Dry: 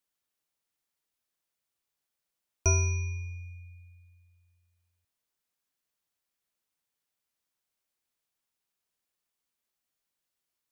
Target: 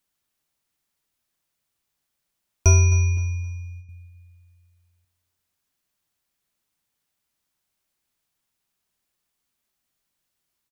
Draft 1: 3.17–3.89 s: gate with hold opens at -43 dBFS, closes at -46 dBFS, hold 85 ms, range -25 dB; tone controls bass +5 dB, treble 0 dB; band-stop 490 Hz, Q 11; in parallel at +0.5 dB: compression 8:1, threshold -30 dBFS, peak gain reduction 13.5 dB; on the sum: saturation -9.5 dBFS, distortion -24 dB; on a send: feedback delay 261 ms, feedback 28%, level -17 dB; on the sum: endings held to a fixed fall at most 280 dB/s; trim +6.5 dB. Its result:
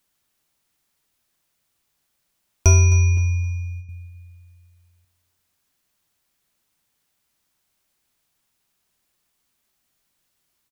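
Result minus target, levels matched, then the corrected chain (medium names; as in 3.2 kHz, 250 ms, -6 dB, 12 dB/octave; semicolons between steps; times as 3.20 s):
compression: peak gain reduction +13.5 dB
3.17–3.89 s: gate with hold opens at -43 dBFS, closes at -46 dBFS, hold 85 ms, range -25 dB; tone controls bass +5 dB, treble 0 dB; band-stop 490 Hz, Q 11; saturation -9.5 dBFS, distortion -27 dB; on a send: feedback delay 261 ms, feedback 28%, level -17 dB; on the sum: endings held to a fixed fall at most 280 dB/s; trim +6.5 dB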